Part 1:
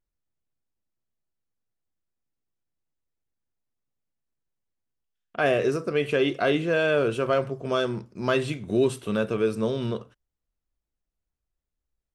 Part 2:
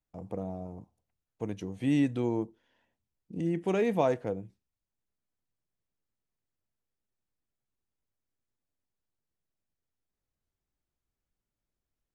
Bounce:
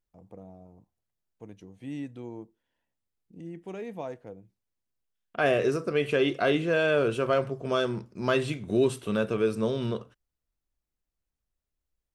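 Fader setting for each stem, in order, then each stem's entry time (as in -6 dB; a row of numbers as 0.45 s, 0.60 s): -1.5 dB, -10.5 dB; 0.00 s, 0.00 s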